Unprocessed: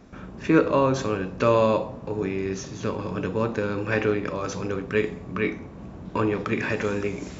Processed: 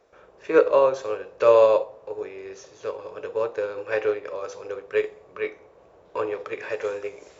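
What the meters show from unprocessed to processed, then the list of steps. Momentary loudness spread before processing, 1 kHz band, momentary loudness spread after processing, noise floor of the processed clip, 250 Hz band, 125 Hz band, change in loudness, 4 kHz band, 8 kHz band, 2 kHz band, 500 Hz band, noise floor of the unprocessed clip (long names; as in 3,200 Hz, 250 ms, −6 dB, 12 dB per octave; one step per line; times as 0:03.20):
10 LU, −1.0 dB, 18 LU, −54 dBFS, −12.5 dB, −20.0 dB, +1.0 dB, −4.5 dB, can't be measured, −4.0 dB, +3.0 dB, −41 dBFS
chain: low shelf with overshoot 330 Hz −13 dB, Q 3
expander for the loud parts 1.5 to 1, over −30 dBFS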